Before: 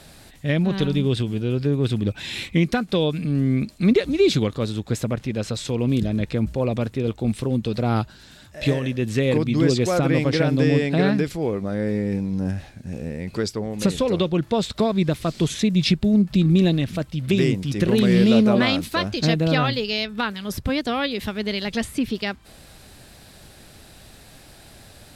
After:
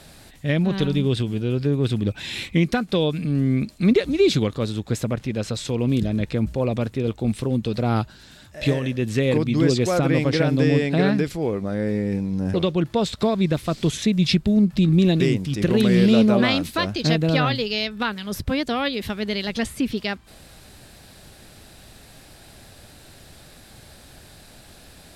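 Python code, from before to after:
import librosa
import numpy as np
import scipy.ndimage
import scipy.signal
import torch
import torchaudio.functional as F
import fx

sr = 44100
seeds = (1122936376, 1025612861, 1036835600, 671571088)

y = fx.edit(x, sr, fx.cut(start_s=12.54, length_s=1.57),
    fx.cut(start_s=16.77, length_s=0.61), tone=tone)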